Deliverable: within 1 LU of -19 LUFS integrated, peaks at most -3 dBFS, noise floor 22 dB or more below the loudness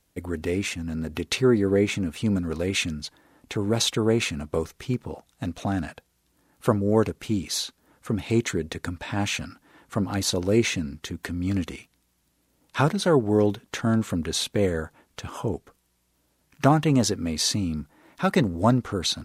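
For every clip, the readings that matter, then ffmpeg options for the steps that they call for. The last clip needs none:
loudness -25.5 LUFS; peak -5.0 dBFS; loudness target -19.0 LUFS
-> -af "volume=6.5dB,alimiter=limit=-3dB:level=0:latency=1"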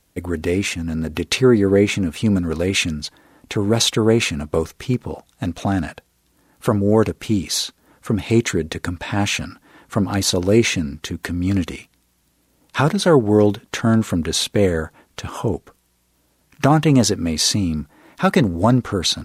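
loudness -19.5 LUFS; peak -3.0 dBFS; noise floor -63 dBFS

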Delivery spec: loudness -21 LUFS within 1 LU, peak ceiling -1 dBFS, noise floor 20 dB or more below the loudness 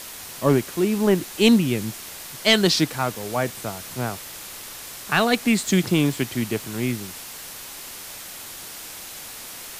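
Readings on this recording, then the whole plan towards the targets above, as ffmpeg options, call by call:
noise floor -38 dBFS; noise floor target -42 dBFS; loudness -22.0 LUFS; peak -4.5 dBFS; loudness target -21.0 LUFS
-> -af "afftdn=nr=6:nf=-38"
-af "volume=1dB"

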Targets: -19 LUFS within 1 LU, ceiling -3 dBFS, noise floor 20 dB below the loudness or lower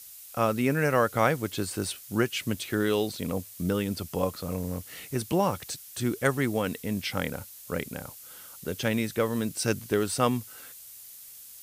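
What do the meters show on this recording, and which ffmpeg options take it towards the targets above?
noise floor -47 dBFS; noise floor target -49 dBFS; loudness -29.0 LUFS; peak -9.0 dBFS; loudness target -19.0 LUFS
-> -af "afftdn=nr=6:nf=-47"
-af "volume=10dB,alimiter=limit=-3dB:level=0:latency=1"

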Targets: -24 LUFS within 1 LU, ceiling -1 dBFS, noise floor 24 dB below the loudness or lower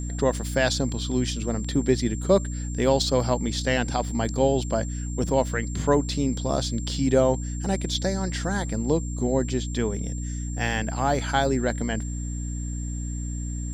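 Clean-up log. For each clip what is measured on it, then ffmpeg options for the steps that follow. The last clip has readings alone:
hum 60 Hz; harmonics up to 300 Hz; hum level -28 dBFS; steady tone 7400 Hz; tone level -40 dBFS; loudness -25.5 LUFS; peak -8.0 dBFS; loudness target -24.0 LUFS
-> -af "bandreject=f=60:t=h:w=6,bandreject=f=120:t=h:w=6,bandreject=f=180:t=h:w=6,bandreject=f=240:t=h:w=6,bandreject=f=300:t=h:w=6"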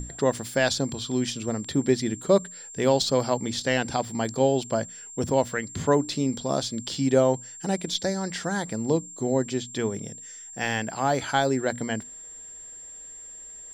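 hum none; steady tone 7400 Hz; tone level -40 dBFS
-> -af "bandreject=f=7.4k:w=30"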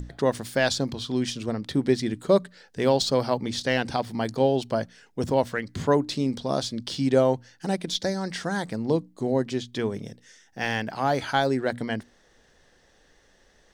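steady tone none; loudness -26.0 LUFS; peak -8.5 dBFS; loudness target -24.0 LUFS
-> -af "volume=2dB"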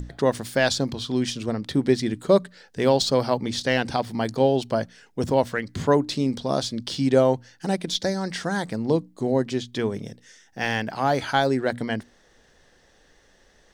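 loudness -24.0 LUFS; peak -6.5 dBFS; noise floor -59 dBFS

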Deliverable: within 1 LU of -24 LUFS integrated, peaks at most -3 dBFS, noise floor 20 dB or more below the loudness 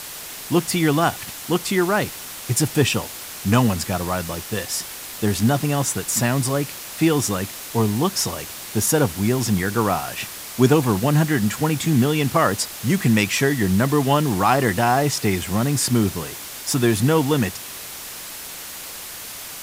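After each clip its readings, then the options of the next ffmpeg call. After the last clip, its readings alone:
noise floor -35 dBFS; noise floor target -41 dBFS; loudness -20.5 LUFS; peak -2.0 dBFS; loudness target -24.0 LUFS
-> -af "afftdn=nr=6:nf=-35"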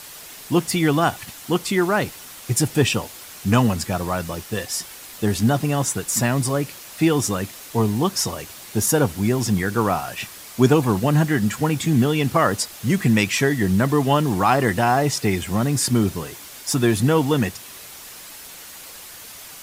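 noise floor -40 dBFS; noise floor target -41 dBFS
-> -af "afftdn=nr=6:nf=-40"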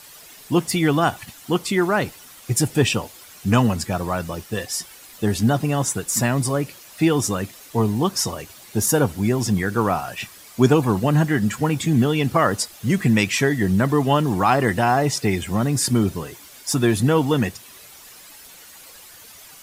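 noise floor -45 dBFS; loudness -21.0 LUFS; peak -2.0 dBFS; loudness target -24.0 LUFS
-> -af "volume=-3dB"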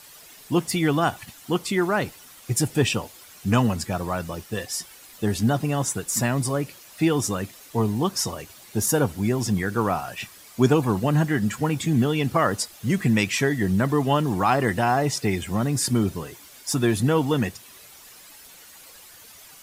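loudness -24.0 LUFS; peak -5.0 dBFS; noise floor -48 dBFS

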